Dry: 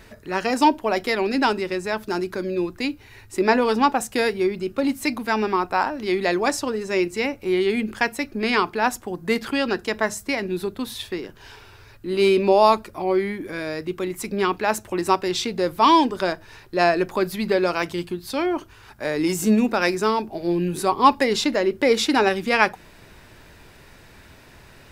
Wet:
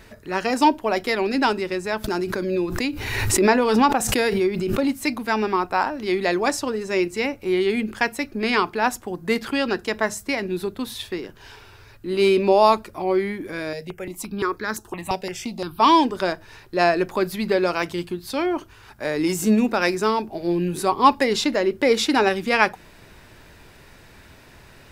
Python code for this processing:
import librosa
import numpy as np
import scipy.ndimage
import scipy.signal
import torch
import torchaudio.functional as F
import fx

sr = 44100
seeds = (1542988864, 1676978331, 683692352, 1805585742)

y = fx.pre_swell(x, sr, db_per_s=35.0, at=(2.04, 4.94))
y = fx.phaser_held(y, sr, hz=5.8, low_hz=320.0, high_hz=2700.0, at=(13.73, 15.8))